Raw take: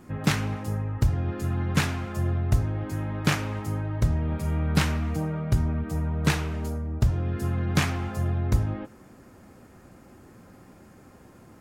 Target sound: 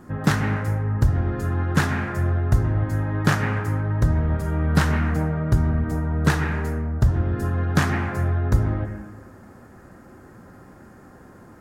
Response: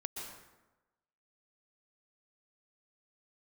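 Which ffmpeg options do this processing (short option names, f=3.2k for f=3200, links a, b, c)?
-filter_complex "[0:a]asplit=2[a][b];[b]lowpass=f=1.8k:t=q:w=2.6[c];[1:a]atrim=start_sample=2205[d];[c][d]afir=irnorm=-1:irlink=0,volume=-2dB[e];[a][e]amix=inputs=2:normalize=0"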